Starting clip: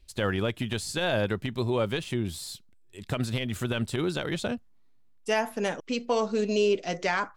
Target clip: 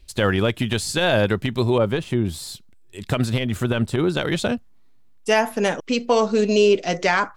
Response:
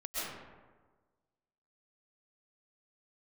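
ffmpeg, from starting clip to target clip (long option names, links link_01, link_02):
-filter_complex "[0:a]asettb=1/sr,asplit=3[link_01][link_02][link_03];[link_01]atrim=end=1.784[link_04];[link_02]atrim=start=1.78:end=4.17,asetpts=PTS-STARTPTS,afade=type=in:duration=0.004:curve=qsin,afade=type=out:start_time=2.386:duration=0.004:curve=qsin,adynamicequalizer=threshold=0.00447:dfrequency=1800:dqfactor=0.7:tfrequency=1800:tqfactor=0.7:attack=5:release=100:ratio=0.375:range=4:mode=cutabove:tftype=highshelf[link_05];[link_03]atrim=start=4.166[link_06];[link_04][link_05]acrossfade=duration=0.004:curve1=hsin:curve2=qsin[link_07];[link_07][link_06]acrossfade=duration=0.004:curve1=qsin:curve2=hsin,volume=8dB"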